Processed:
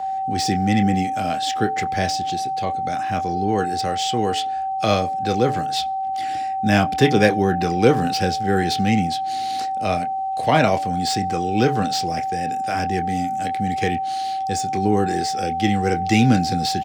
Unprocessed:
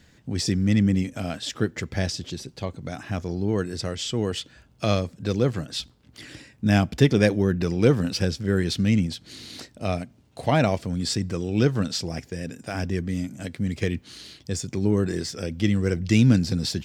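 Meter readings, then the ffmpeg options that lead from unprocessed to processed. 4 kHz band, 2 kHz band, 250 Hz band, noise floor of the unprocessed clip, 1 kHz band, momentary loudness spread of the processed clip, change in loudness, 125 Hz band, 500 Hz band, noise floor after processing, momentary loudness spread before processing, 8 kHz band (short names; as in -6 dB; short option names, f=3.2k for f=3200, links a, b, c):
+4.5 dB, +6.0 dB, +2.0 dB, -57 dBFS, +18.5 dB, 7 LU, +4.0 dB, -1.0 dB, +4.5 dB, -25 dBFS, 14 LU, +3.5 dB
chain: -filter_complex "[0:a]aeval=exprs='val(0)+0.0316*sin(2*PI*770*n/s)':c=same,lowshelf=f=170:g=-9.5,bandreject=f=144.2:t=h:w=4,bandreject=f=288.4:t=h:w=4,bandreject=f=432.6:t=h:w=4,bandreject=f=576.8:t=h:w=4,bandreject=f=721:t=h:w=4,bandreject=f=865.2:t=h:w=4,acrossover=split=380|450|3500[a][b][c][d];[c]asplit=2[e][f];[f]adelay=26,volume=-5.5dB[g];[e][g]amix=inputs=2:normalize=0[h];[d]asoftclip=type=tanh:threshold=-28dB[i];[a][b][h][i]amix=inputs=4:normalize=0,volume=5.5dB"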